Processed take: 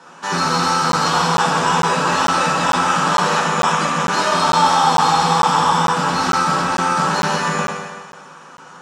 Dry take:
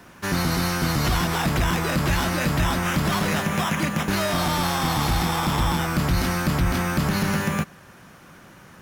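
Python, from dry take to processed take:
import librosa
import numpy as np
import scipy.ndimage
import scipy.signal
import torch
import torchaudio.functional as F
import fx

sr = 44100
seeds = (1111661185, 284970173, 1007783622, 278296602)

y = fx.cabinet(x, sr, low_hz=300.0, low_slope=12, high_hz=8200.0, hz=(910.0, 1300.0, 2100.0, 7300.0), db=(8, 6, -7, 4))
y = fx.rev_fdn(y, sr, rt60_s=1.6, lf_ratio=0.8, hf_ratio=0.95, size_ms=36.0, drr_db=-5.5)
y = fx.buffer_crackle(y, sr, first_s=0.92, period_s=0.45, block=512, kind='zero')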